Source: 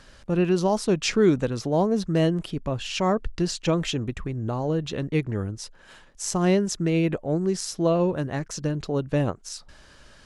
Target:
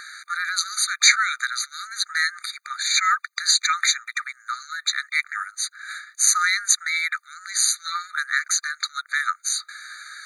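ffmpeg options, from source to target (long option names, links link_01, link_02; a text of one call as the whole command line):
ffmpeg -i in.wav -af "apsyclip=17.5dB,afftfilt=real='re*eq(mod(floor(b*sr/1024/1200),2),1)':imag='im*eq(mod(floor(b*sr/1024/1200),2),1)':win_size=1024:overlap=0.75" out.wav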